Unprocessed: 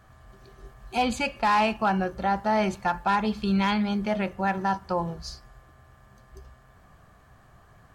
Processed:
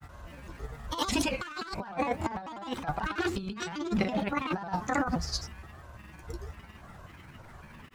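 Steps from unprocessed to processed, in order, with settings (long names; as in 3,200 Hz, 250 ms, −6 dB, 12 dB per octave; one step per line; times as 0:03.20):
pitch shifter gated in a rhythm +7 semitones, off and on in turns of 284 ms
granular cloud 100 ms, grains 20 per second, pitch spread up and down by 3 semitones
compressor whose output falls as the input rises −32 dBFS, ratio −0.5
level +1.5 dB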